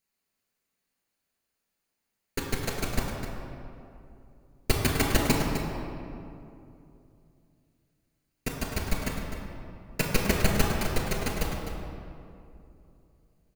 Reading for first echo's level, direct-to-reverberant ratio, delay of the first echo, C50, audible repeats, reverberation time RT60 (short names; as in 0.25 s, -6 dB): -9.5 dB, -2.0 dB, 0.255 s, 1.0 dB, 1, 2.7 s